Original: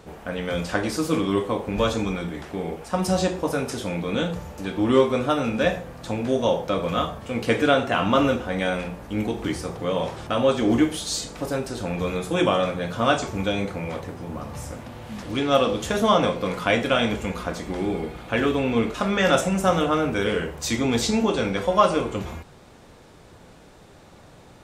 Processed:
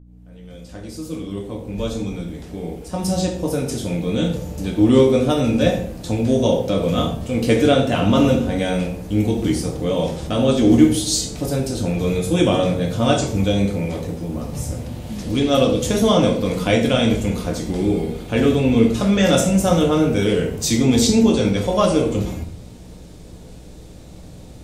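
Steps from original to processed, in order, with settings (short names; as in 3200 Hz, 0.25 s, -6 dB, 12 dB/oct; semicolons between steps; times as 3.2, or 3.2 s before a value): opening faded in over 4.96 s; bell 1300 Hz -14.5 dB 2.3 oct; hum 60 Hz, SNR 25 dB; reverb RT60 0.55 s, pre-delay 7 ms, DRR 3.5 dB; gain +8.5 dB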